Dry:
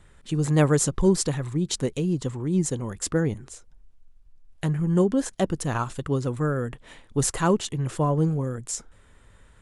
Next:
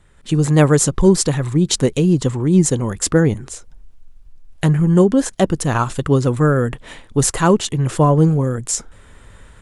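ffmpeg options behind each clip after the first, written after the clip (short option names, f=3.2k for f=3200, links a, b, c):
-af "dynaudnorm=f=160:g=3:m=11dB"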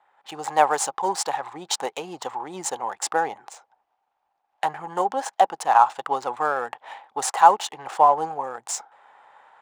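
-af "adynamicsmooth=sensitivity=5:basefreq=2.9k,highpass=f=810:t=q:w=9.3,volume=-6dB"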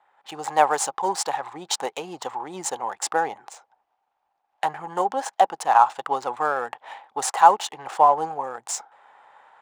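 -af anull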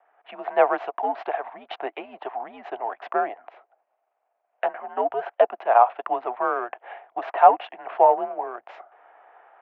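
-af "highpass=f=500:t=q:w=0.5412,highpass=f=500:t=q:w=1.307,lowpass=f=2.8k:t=q:w=0.5176,lowpass=f=2.8k:t=q:w=0.7071,lowpass=f=2.8k:t=q:w=1.932,afreqshift=-110"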